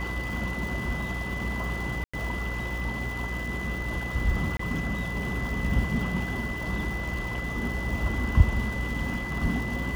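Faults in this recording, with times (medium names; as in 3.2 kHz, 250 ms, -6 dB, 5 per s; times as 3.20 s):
buzz 60 Hz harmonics 9 -34 dBFS
crackle 400 per s -36 dBFS
whine 2 kHz -34 dBFS
2.04–2.13 s: dropout 95 ms
4.57–4.59 s: dropout 24 ms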